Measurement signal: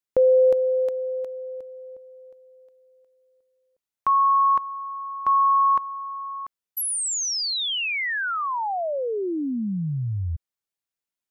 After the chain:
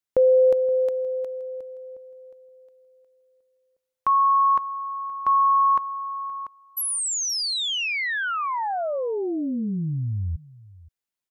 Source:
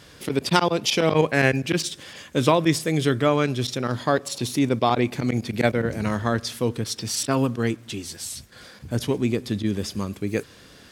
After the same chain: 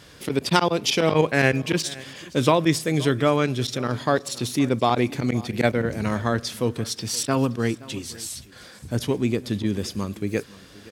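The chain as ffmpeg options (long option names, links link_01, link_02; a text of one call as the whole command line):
ffmpeg -i in.wav -af "aecho=1:1:522:0.0944" out.wav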